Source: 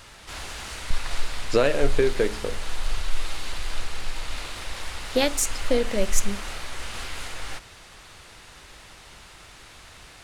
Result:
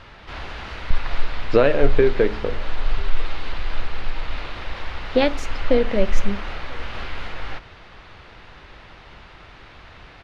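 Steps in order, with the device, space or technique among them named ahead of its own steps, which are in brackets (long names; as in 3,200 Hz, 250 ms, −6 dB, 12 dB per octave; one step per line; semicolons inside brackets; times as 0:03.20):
shout across a valley (high-frequency loss of the air 290 metres; slap from a distant wall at 170 metres, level −27 dB)
level +5.5 dB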